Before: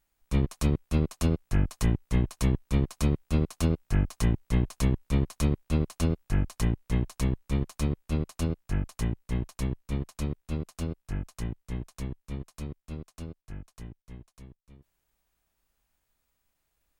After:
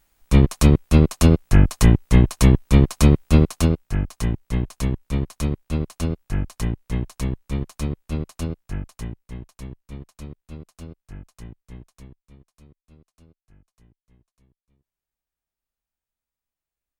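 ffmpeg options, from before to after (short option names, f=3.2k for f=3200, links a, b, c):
-af "volume=11.5dB,afade=t=out:st=3.36:d=0.53:silence=0.334965,afade=t=out:st=8.33:d=1.04:silence=0.398107,afade=t=out:st=11.76:d=0.6:silence=0.398107"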